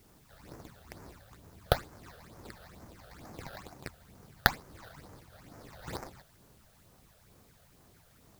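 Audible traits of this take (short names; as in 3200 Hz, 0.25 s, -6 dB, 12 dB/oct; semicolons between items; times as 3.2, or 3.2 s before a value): aliases and images of a low sample rate 3000 Hz, jitter 20%; phasing stages 8, 2.2 Hz, lowest notch 280–3600 Hz; a quantiser's noise floor 12-bit, dither triangular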